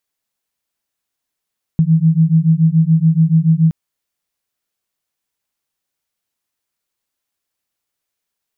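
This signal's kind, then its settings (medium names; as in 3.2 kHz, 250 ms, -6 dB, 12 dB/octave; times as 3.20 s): beating tones 158 Hz, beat 7 Hz, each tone -12 dBFS 1.92 s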